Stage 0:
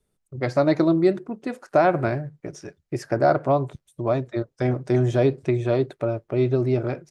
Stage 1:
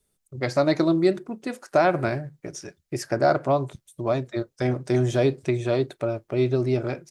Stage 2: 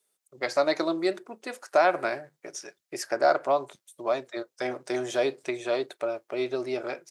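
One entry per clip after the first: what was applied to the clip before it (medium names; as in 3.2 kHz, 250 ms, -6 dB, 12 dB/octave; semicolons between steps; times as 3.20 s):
treble shelf 3.1 kHz +10.5 dB; on a send at -19.5 dB: reverberation, pre-delay 3 ms; on the sum: trim -2 dB
high-pass 510 Hz 12 dB/octave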